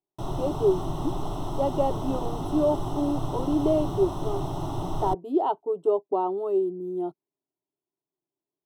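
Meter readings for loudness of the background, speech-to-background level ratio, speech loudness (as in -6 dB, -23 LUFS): -33.0 LUFS, 5.5 dB, -27.5 LUFS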